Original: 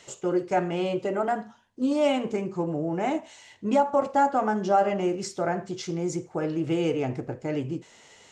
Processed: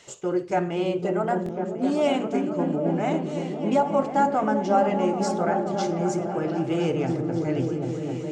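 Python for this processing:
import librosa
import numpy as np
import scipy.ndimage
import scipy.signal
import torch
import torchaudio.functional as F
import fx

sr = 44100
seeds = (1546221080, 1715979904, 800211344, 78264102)

y = fx.echo_opening(x, sr, ms=262, hz=200, octaves=1, feedback_pct=70, wet_db=0)
y = fx.buffer_glitch(y, sr, at_s=(1.44,), block=1024, repeats=1)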